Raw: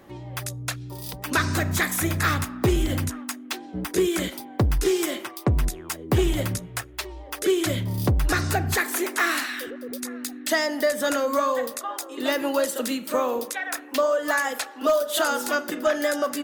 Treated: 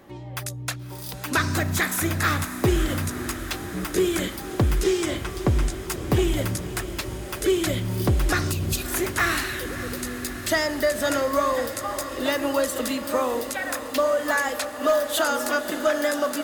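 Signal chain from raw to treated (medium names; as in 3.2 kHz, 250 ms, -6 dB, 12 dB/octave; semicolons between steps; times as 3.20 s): 4.83–5.74 s: Savitzky-Golay filter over 9 samples; 8.52–8.91 s: spectral selection erased 280–2400 Hz; echo that smears into a reverb 576 ms, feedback 77%, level -12.5 dB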